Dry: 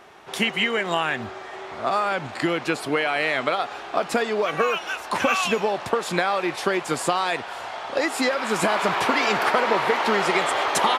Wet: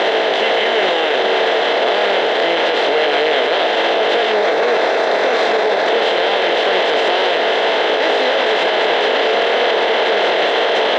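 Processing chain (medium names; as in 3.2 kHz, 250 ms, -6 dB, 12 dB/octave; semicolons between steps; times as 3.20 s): spectral levelling over time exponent 0.2; 4.32–5.88 s: peaking EQ 3 kHz -10.5 dB 0.32 oct; chorus 0.26 Hz, delay 18 ms, depth 7.4 ms; cabinet simulation 400–4700 Hz, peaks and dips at 450 Hz +9 dB, 660 Hz +8 dB, 1.2 kHz -8 dB, 1.7 kHz +4 dB, 2.4 kHz -4 dB, 3.4 kHz +9 dB; loudness maximiser +12 dB; trim -6 dB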